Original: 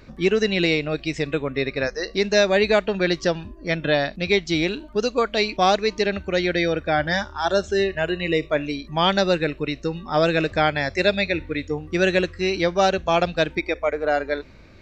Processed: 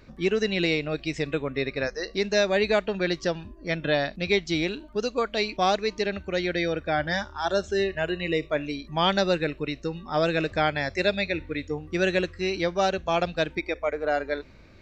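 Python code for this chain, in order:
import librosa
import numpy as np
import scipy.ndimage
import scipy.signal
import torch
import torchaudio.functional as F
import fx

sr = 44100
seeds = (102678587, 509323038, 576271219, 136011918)

y = fx.rider(x, sr, range_db=10, speed_s=2.0)
y = y * librosa.db_to_amplitude(-5.0)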